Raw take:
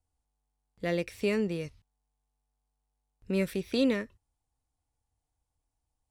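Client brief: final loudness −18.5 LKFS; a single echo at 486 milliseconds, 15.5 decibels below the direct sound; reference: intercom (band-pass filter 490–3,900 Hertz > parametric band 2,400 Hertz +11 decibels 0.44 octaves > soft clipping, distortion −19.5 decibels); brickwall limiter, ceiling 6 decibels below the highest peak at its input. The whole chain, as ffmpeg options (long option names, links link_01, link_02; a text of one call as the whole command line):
ffmpeg -i in.wav -af "alimiter=limit=-22dB:level=0:latency=1,highpass=490,lowpass=3900,equalizer=frequency=2400:width_type=o:width=0.44:gain=11,aecho=1:1:486:0.168,asoftclip=threshold=-24dB,volume=18.5dB" out.wav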